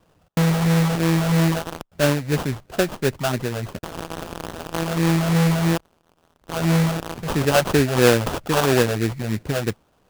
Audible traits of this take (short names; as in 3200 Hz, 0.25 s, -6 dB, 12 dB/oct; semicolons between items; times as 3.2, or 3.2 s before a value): phasing stages 12, 3 Hz, lowest notch 310–3200 Hz; aliases and images of a low sample rate 2100 Hz, jitter 20%